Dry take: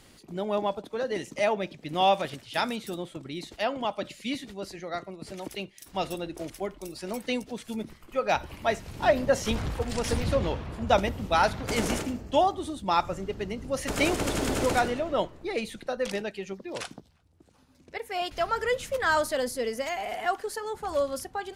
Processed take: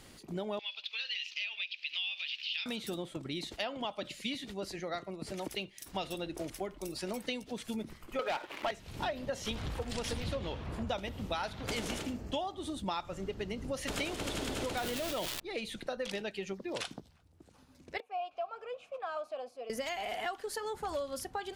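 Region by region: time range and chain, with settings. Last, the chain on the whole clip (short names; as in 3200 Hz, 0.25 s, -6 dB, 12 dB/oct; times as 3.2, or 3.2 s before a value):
0.59–2.66 resonant high-pass 2600 Hz, resonance Q 6.8 + compressor 2:1, threshold -42 dBFS + resonant high shelf 6500 Hz -11.5 dB, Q 3
8.19–8.71 HPF 310 Hz 24 dB/oct + resonant high shelf 2800 Hz -9.5 dB, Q 1.5 + sample leveller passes 3
14.77–15.4 switching spikes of -18 dBFS + high shelf 4900 Hz -6.5 dB + fast leveller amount 70%
18–19.7 block floating point 7-bit + vowel filter a
whole clip: dynamic EQ 3400 Hz, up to +7 dB, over -48 dBFS, Q 1.5; compressor 6:1, threshold -34 dBFS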